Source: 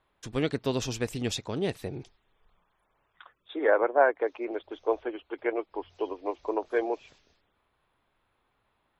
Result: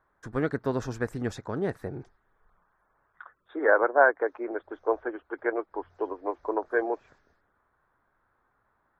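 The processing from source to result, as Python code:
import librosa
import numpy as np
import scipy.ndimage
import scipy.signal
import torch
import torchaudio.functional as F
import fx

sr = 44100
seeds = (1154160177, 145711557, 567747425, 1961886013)

y = fx.high_shelf_res(x, sr, hz=2100.0, db=-10.0, q=3.0)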